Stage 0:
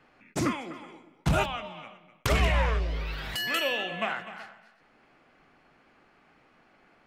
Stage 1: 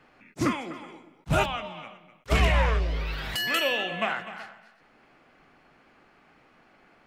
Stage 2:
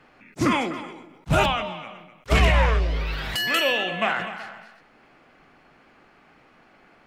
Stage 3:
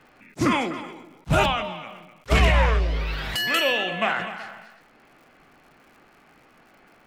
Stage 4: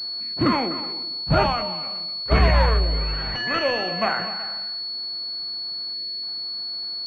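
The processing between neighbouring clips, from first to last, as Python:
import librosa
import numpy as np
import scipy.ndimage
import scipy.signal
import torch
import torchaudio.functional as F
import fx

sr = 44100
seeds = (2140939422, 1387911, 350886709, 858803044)

y1 = fx.attack_slew(x, sr, db_per_s=580.0)
y1 = y1 * 10.0 ** (2.5 / 20.0)
y2 = fx.high_shelf(y1, sr, hz=11000.0, db=-3.0)
y2 = fx.sustainer(y2, sr, db_per_s=49.0)
y2 = y2 * 10.0 ** (3.5 / 20.0)
y3 = fx.dmg_crackle(y2, sr, seeds[0], per_s=140.0, level_db=-48.0)
y4 = fx.spec_box(y3, sr, start_s=5.94, length_s=0.29, low_hz=700.0, high_hz=1600.0, gain_db=-17)
y4 = fx.pwm(y4, sr, carrier_hz=4400.0)
y4 = y4 * 10.0 ** (1.5 / 20.0)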